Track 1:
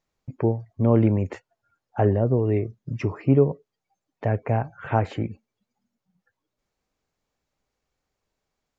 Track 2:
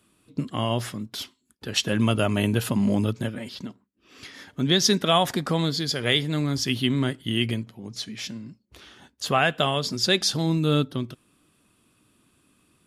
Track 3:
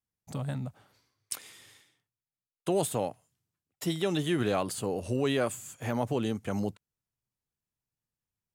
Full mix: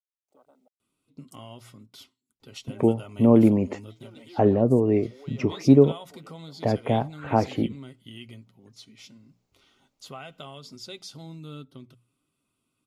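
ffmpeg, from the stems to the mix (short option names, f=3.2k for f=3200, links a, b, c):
-filter_complex "[0:a]equalizer=f=100:t=o:w=0.67:g=-8,equalizer=f=250:t=o:w=0.67:g=5,equalizer=f=1.6k:t=o:w=0.67:g=-7,adelay=2400,volume=1.5dB[a];[1:a]bandreject=f=60:t=h:w=6,bandreject=f=120:t=h:w=6,bandreject=f=180:t=h:w=6,aecho=1:1:7.5:0.33,adelay=800,volume=-14.5dB[b];[2:a]highpass=f=330:w=0.5412,highpass=f=330:w=1.3066,afwtdn=0.00708,acrusher=bits=10:mix=0:aa=0.000001,volume=-17dB[c];[b][c]amix=inputs=2:normalize=0,asuperstop=centerf=1700:order=8:qfactor=6,acompressor=threshold=-41dB:ratio=2,volume=0dB[d];[a][d]amix=inputs=2:normalize=0"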